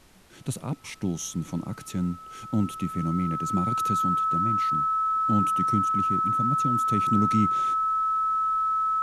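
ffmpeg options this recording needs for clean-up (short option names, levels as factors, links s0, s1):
-af "bandreject=f=1300:w=30,agate=range=0.0891:threshold=0.0158"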